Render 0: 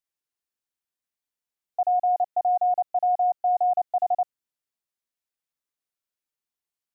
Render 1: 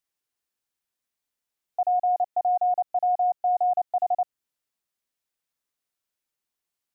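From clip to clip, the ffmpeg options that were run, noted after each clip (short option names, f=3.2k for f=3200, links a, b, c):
-af "alimiter=limit=-22.5dB:level=0:latency=1:release=195,volume=4dB"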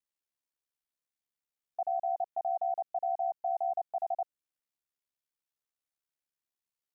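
-af "aeval=exprs='val(0)*sin(2*PI*35*n/s)':c=same,volume=-6dB"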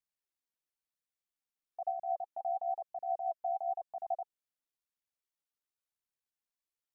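-af "flanger=delay=0.4:depth=4:regen=41:speed=1:shape=triangular"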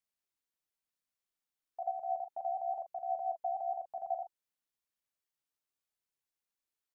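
-filter_complex "[0:a]asplit=2[a][b];[b]adelay=40,volume=-10dB[c];[a][c]amix=inputs=2:normalize=0"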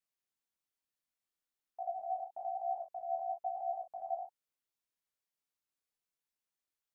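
-af "flanger=delay=18.5:depth=5.2:speed=1.1,volume=1dB"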